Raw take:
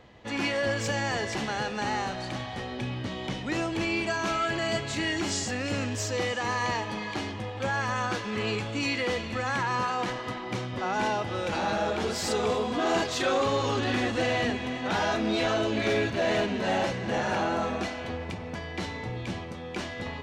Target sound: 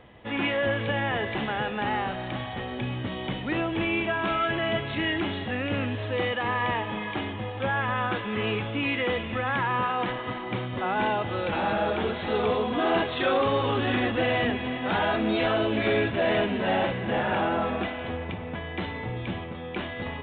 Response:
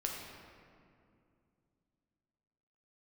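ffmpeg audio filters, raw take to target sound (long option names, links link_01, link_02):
-af "aresample=8000,aresample=44100,volume=2dB"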